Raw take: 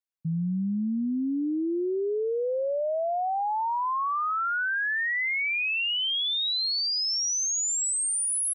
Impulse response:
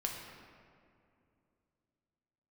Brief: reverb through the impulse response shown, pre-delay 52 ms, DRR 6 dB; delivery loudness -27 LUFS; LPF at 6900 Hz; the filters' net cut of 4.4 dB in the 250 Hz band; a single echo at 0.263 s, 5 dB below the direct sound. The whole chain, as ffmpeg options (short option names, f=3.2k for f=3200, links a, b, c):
-filter_complex "[0:a]lowpass=6.9k,equalizer=f=250:t=o:g=-6,aecho=1:1:263:0.562,asplit=2[a][b];[1:a]atrim=start_sample=2205,adelay=52[c];[b][c]afir=irnorm=-1:irlink=0,volume=-8dB[d];[a][d]amix=inputs=2:normalize=0,volume=-2dB"